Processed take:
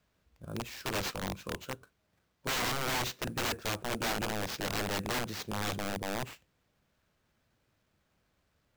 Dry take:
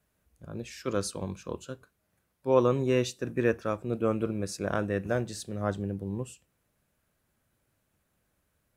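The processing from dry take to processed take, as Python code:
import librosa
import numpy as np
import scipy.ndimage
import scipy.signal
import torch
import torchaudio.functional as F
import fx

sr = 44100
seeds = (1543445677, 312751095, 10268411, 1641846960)

y = fx.sample_hold(x, sr, seeds[0], rate_hz=10000.0, jitter_pct=20)
y = (np.mod(10.0 ** (27.0 / 20.0) * y + 1.0, 2.0) - 1.0) / 10.0 ** (27.0 / 20.0)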